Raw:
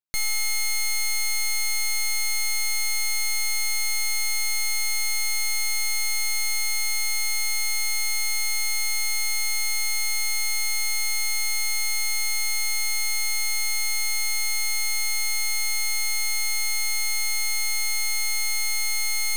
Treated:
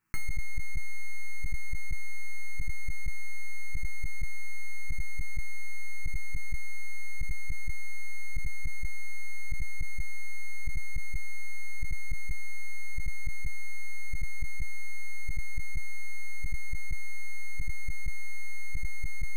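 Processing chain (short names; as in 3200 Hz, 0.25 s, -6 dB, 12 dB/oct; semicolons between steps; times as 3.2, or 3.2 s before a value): tone controls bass +2 dB, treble -12 dB; resonator bank A2 major, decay 0.56 s; step gate "xxx.xx..xxxx" 156 bpm -24 dB; fixed phaser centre 1500 Hz, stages 4; fast leveller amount 100%; gain +1.5 dB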